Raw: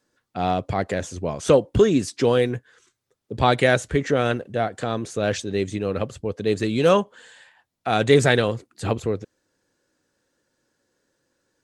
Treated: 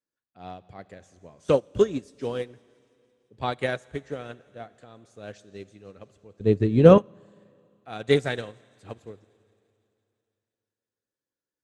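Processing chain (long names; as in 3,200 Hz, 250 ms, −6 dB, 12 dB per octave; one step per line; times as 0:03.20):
0:06.40–0:06.98: spectral tilt −4 dB per octave
on a send: delay with a high-pass on its return 169 ms, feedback 73%, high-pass 2,800 Hz, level −19 dB
on the sum: four-comb reverb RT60 2.8 s, combs from 30 ms, DRR 12.5 dB
expander for the loud parts 2.5 to 1, over −25 dBFS
level +1 dB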